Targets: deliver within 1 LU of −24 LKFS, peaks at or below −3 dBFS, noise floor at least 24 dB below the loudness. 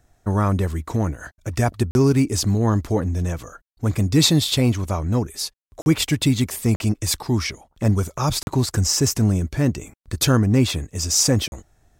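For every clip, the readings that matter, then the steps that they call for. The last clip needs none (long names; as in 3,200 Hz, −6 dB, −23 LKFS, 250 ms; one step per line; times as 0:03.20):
number of dropouts 5; longest dropout 41 ms; integrated loudness −21.0 LKFS; sample peak −4.5 dBFS; target loudness −24.0 LKFS
→ repair the gap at 0:01.91/0:05.82/0:06.76/0:08.43/0:11.48, 41 ms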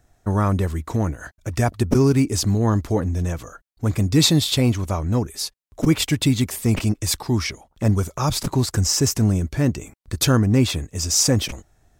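number of dropouts 0; integrated loudness −21.0 LKFS; sample peak −4.5 dBFS; target loudness −24.0 LKFS
→ level −3 dB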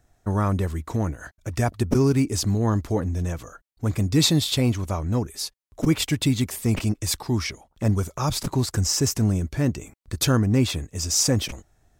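integrated loudness −24.0 LKFS; sample peak −7.5 dBFS; background noise floor −66 dBFS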